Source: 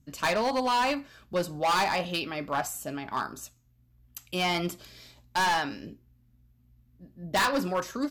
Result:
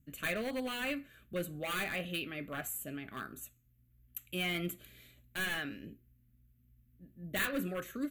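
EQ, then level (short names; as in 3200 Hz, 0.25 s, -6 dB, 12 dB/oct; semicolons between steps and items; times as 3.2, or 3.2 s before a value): high shelf 11000 Hz +12 dB; fixed phaser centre 2200 Hz, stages 4; -5.0 dB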